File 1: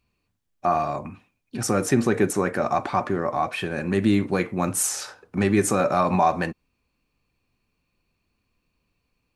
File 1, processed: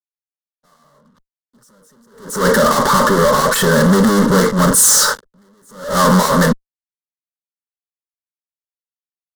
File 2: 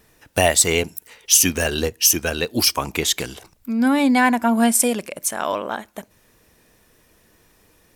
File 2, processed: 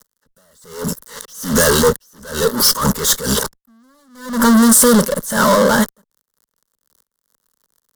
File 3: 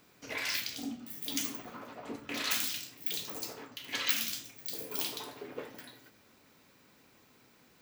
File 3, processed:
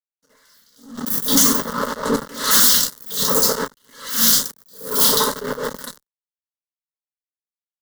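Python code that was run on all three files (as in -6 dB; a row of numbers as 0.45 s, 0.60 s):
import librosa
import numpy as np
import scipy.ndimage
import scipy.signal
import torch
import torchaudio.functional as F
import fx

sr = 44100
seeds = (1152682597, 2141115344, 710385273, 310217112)

y = fx.fuzz(x, sr, gain_db=41.0, gate_db=-48.0)
y = fx.fixed_phaser(y, sr, hz=490.0, stages=8)
y = fx.attack_slew(y, sr, db_per_s=110.0)
y = y * librosa.db_to_amplitude(5.5)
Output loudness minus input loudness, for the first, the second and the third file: +11.5 LU, +4.5 LU, +19.0 LU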